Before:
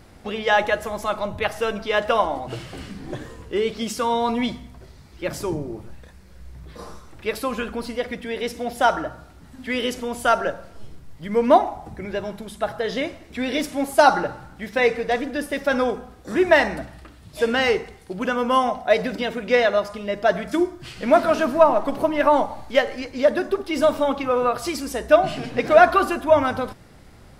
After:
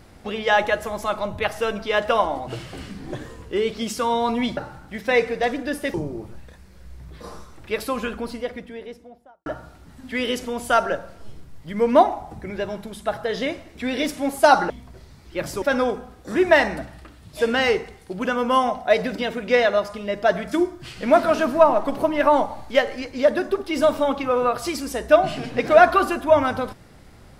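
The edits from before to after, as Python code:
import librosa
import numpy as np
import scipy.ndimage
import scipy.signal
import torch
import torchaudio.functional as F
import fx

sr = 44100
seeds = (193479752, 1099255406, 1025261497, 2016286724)

y = fx.studio_fade_out(x, sr, start_s=7.55, length_s=1.46)
y = fx.edit(y, sr, fx.swap(start_s=4.57, length_s=0.92, other_s=14.25, other_length_s=1.37), tone=tone)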